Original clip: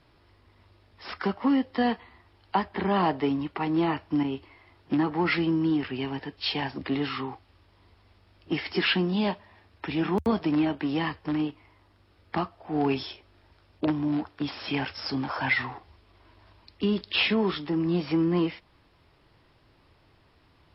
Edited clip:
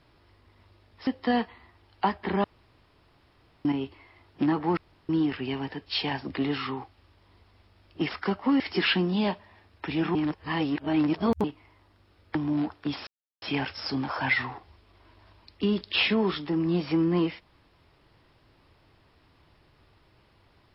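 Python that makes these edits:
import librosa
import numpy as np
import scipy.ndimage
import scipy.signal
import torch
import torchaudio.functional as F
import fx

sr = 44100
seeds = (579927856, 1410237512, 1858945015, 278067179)

y = fx.edit(x, sr, fx.move(start_s=1.07, length_s=0.51, to_s=8.6),
    fx.room_tone_fill(start_s=2.95, length_s=1.21),
    fx.room_tone_fill(start_s=5.28, length_s=0.32),
    fx.reverse_span(start_s=10.15, length_s=1.29),
    fx.cut(start_s=12.35, length_s=1.55),
    fx.insert_silence(at_s=14.62, length_s=0.35), tone=tone)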